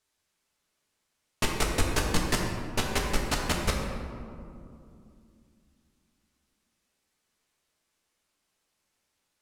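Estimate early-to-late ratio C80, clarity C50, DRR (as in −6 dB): 3.5 dB, 2.0 dB, −1.5 dB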